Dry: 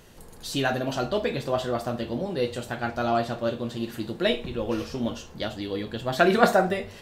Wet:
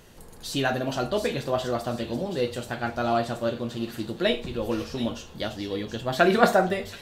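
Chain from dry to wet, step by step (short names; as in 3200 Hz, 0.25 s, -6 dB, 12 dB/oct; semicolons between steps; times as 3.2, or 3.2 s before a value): thin delay 0.727 s, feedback 35%, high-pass 4300 Hz, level -5 dB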